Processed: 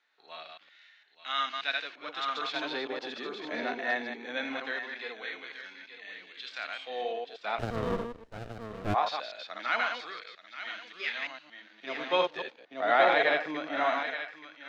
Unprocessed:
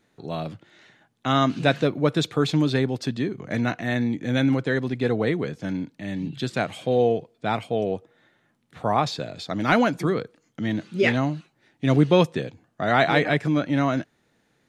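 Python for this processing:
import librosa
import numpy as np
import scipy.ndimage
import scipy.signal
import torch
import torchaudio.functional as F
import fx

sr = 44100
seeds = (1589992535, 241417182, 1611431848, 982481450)

p1 = fx.reverse_delay(x, sr, ms=115, wet_db=-3.5)
p2 = scipy.signal.sosfilt(scipy.signal.butter(4, 5000.0, 'lowpass', fs=sr, output='sos'), p1)
p3 = fx.hpss(p2, sr, part='percussive', gain_db=-11)
p4 = scipy.signal.sosfilt(scipy.signal.butter(4, 180.0, 'highpass', fs=sr, output='sos'), p3)
p5 = p4 + fx.echo_single(p4, sr, ms=878, db=-8.5, dry=0)
p6 = fx.filter_lfo_highpass(p5, sr, shape='sine', hz=0.21, low_hz=630.0, high_hz=2000.0, q=0.9)
y = fx.running_max(p6, sr, window=33, at=(7.58, 8.93), fade=0.02)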